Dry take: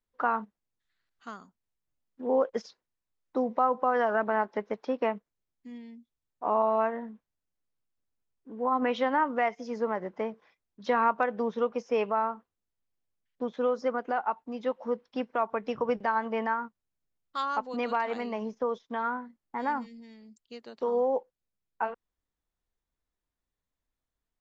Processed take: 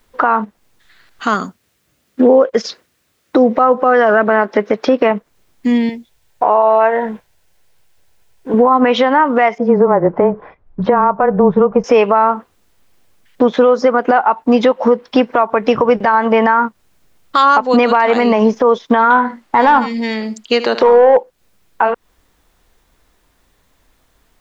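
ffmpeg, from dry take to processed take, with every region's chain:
ffmpeg -i in.wav -filter_complex "[0:a]asettb=1/sr,asplit=3[link_01][link_02][link_03];[link_01]atrim=end=1.344[link_04];[link_02]atrim=start=1.34:end=5.11,asetpts=PTS-STARTPTS,afade=type=in:duration=0.004:curve=qsin,afade=type=out:start_time=3.766:duration=0.004:curve=qsin,highpass=72,equalizer=frequency=870:width_type=o:width=0.57:gain=-6.5,bandreject=frequency=1000:width=24[link_05];[link_03]atrim=start=5.106[link_06];[link_04][link_05]acrossfade=duration=0.004:curve1=hsin:curve2=qsin[link_07];[link_07][link_06]acrossfade=duration=0.004:curve1=qsin:curve2=hsin,asettb=1/sr,asplit=3[link_08][link_09][link_10];[link_08]atrim=end=5.894[link_11];[link_09]atrim=start=5.89:end=8.54,asetpts=PTS-STARTPTS,afade=type=in:duration=0.004:curve=qsin,afade=type=out:start_time=2.646:duration=0.004:curve=qsin,equalizer=frequency=250:width_type=o:width=0.76:gain=-12.5,bandreject=frequency=1200:width=5.2[link_12];[link_10]atrim=start=8.536[link_13];[link_11][link_12]acrossfade=duration=0.004:curve1=hsin:curve2=qsin[link_14];[link_14][link_13]acrossfade=duration=0.004:curve1=qsin:curve2=hsin,asettb=1/sr,asplit=3[link_15][link_16][link_17];[link_15]atrim=end=9.584[link_18];[link_16]atrim=start=9.58:end=11.84,asetpts=PTS-STARTPTS,afade=type=in:duration=0.004:curve=qsin,afade=type=out:start_time=2.256:duration=0.004:curve=qsin,lowpass=1000,asubboost=boost=10.5:cutoff=120,afreqshift=-16[link_19];[link_17]atrim=start=11.836[link_20];[link_18][link_19]acrossfade=duration=0.004:curve1=hsin:curve2=qsin[link_21];[link_21][link_20]acrossfade=duration=0.004:curve1=qsin:curve2=hsin,asettb=1/sr,asplit=3[link_22][link_23][link_24];[link_22]atrim=end=19.104[link_25];[link_23]atrim=start=19.1:end=21.17,asetpts=PTS-STARTPTS,afade=type=in:duration=0.004:curve=qsin,afade=type=out:start_time=2.066:duration=0.004:curve=qsin,asplit=2[link_26][link_27];[link_27]highpass=frequency=720:poles=1,volume=11dB,asoftclip=type=tanh:threshold=-18dB[link_28];[link_26][link_28]amix=inputs=2:normalize=0,lowpass=frequency=3100:poles=1,volume=-6dB,aecho=1:1:77:0.158,atrim=end_sample=91287[link_29];[link_24]atrim=start=21.166[link_30];[link_25][link_29]acrossfade=duration=0.004:curve1=hsin:curve2=qsin[link_31];[link_31][link_30]acrossfade=duration=0.004:curve1=qsin:curve2=hsin,bass=frequency=250:gain=-3,treble=frequency=4000:gain=-3,acompressor=threshold=-39dB:ratio=6,alimiter=level_in=33.5dB:limit=-1dB:release=50:level=0:latency=1,volume=-1dB" out.wav

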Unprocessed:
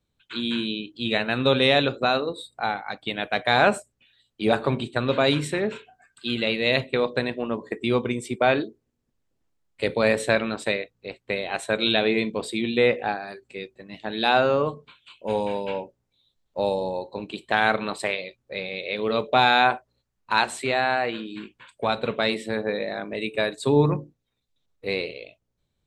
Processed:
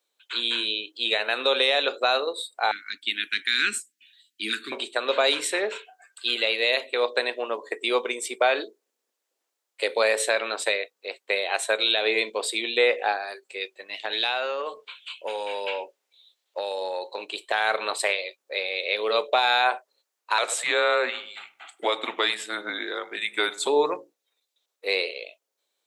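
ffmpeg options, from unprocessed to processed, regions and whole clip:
ffmpeg -i in.wav -filter_complex "[0:a]asettb=1/sr,asplit=3[link_01][link_02][link_03];[link_01]atrim=end=2.714[link_04];[link_02]atrim=start=2.71:end=4.72,asetpts=PTS-STARTPTS,afade=type=in:duration=0.004:curve=qsin,afade=type=out:start_time=2.006:duration=0.004:curve=qsin,asuperstop=centerf=670:order=8:qfactor=0.52,lowshelf=frequency=780:width_type=q:width=1.5:gain=6[link_05];[link_03]atrim=start=4.716[link_06];[link_04][link_05]acrossfade=duration=0.004:curve1=hsin:curve2=qsin[link_07];[link_07][link_06]acrossfade=duration=0.004:curve1=qsin:curve2=hsin,asettb=1/sr,asplit=3[link_08][link_09][link_10];[link_08]atrim=end=13.614[link_11];[link_09]atrim=start=13.61:end=17.25,asetpts=PTS-STARTPTS,afade=type=in:duration=0.004:curve=qsin,afade=type=out:start_time=3.636:duration=0.004:curve=qsin,acompressor=threshold=-26dB:ratio=12:attack=3.2:release=140:knee=1:detection=peak,equalizer=frequency=2700:width_type=o:width=1.5:gain=6.5[link_12];[link_10]atrim=start=17.246[link_13];[link_11][link_12]acrossfade=duration=0.004:curve1=hsin:curve2=qsin[link_14];[link_14][link_13]acrossfade=duration=0.004:curve1=qsin:curve2=hsin,asettb=1/sr,asplit=3[link_15][link_16][link_17];[link_15]atrim=end=20.384[link_18];[link_16]atrim=start=20.38:end=23.67,asetpts=PTS-STARTPTS,afade=type=in:duration=0.004:curve=qsin,afade=type=out:start_time=3.286:duration=0.004:curve=qsin,asplit=2[link_19][link_20];[link_20]adelay=98,lowpass=frequency=980:poles=1,volume=-14.5dB,asplit=2[link_21][link_22];[link_22]adelay=98,lowpass=frequency=980:poles=1,volume=0.48,asplit=2[link_23][link_24];[link_24]adelay=98,lowpass=frequency=980:poles=1,volume=0.48,asplit=2[link_25][link_26];[link_26]adelay=98,lowpass=frequency=980:poles=1,volume=0.48[link_27];[link_19][link_21][link_23][link_25][link_27]amix=inputs=5:normalize=0,atrim=end_sample=145089,afreqshift=-230[link_28];[link_17]atrim=start=23.666[link_29];[link_18][link_28]acrossfade=duration=0.004:curve1=hsin:curve2=qsin[link_30];[link_30][link_29]acrossfade=duration=0.004:curve1=qsin:curve2=hsin,highpass=frequency=430:width=0.5412,highpass=frequency=430:width=1.3066,highshelf=frequency=3700:gain=7.5,alimiter=limit=-12.5dB:level=0:latency=1:release=122,volume=2dB" out.wav

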